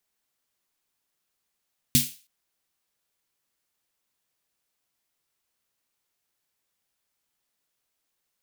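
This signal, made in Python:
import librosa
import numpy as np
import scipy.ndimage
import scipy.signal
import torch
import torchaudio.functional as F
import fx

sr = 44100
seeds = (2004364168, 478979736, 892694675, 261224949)

y = fx.drum_snare(sr, seeds[0], length_s=0.32, hz=140.0, second_hz=240.0, noise_db=2, noise_from_hz=2500.0, decay_s=0.21, noise_decay_s=0.36)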